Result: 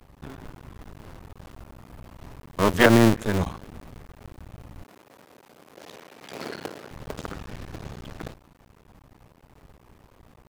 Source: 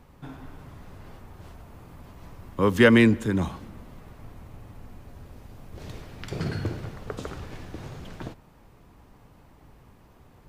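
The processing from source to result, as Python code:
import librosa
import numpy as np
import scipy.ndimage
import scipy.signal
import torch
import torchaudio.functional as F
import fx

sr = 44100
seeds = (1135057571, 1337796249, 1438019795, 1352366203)

y = fx.cycle_switch(x, sr, every=2, mode='muted')
y = fx.highpass(y, sr, hz=340.0, slope=12, at=(4.84, 6.91))
y = F.gain(torch.from_numpy(y), 3.0).numpy()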